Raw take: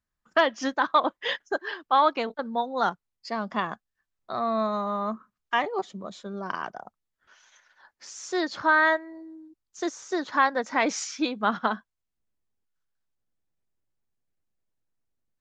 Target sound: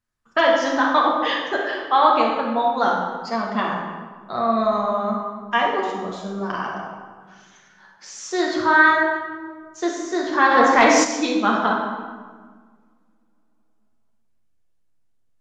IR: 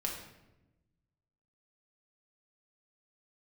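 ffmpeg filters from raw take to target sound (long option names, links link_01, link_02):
-filter_complex "[1:a]atrim=start_sample=2205,asetrate=24255,aresample=44100[link_01];[0:a][link_01]afir=irnorm=-1:irlink=0,asplit=3[link_02][link_03][link_04];[link_02]afade=type=out:start_time=10.5:duration=0.02[link_05];[link_03]acontrast=48,afade=type=in:start_time=10.5:duration=0.02,afade=type=out:start_time=11.03:duration=0.02[link_06];[link_04]afade=type=in:start_time=11.03:duration=0.02[link_07];[link_05][link_06][link_07]amix=inputs=3:normalize=0"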